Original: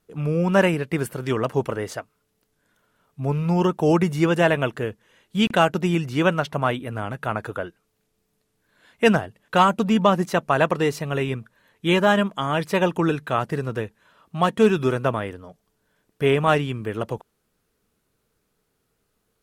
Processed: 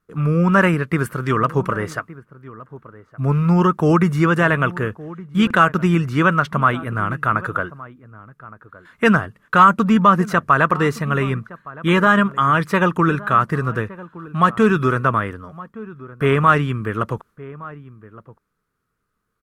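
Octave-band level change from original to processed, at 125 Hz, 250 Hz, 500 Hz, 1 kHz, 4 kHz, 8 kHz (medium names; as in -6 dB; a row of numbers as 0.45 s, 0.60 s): +6.0 dB, +4.5 dB, 0.0 dB, +7.0 dB, -1.5 dB, no reading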